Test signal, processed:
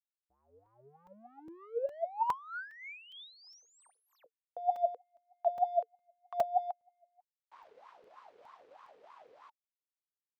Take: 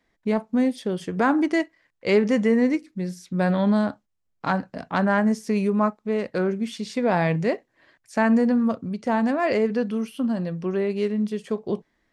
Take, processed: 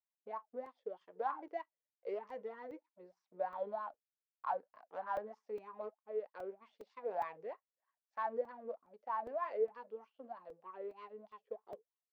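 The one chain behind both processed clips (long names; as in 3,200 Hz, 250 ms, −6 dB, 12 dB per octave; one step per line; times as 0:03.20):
power curve on the samples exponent 1.4
in parallel at −4.5 dB: sine wavefolder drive 7 dB, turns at −9 dBFS
on the sum: LFO wah 3.2 Hz 440–1,100 Hz, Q 12
low-pass filter 4,000 Hz 12 dB per octave
spectral tilt +4 dB per octave
regular buffer underruns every 0.41 s, samples 128, zero, from 0:00.66
level −7.5 dB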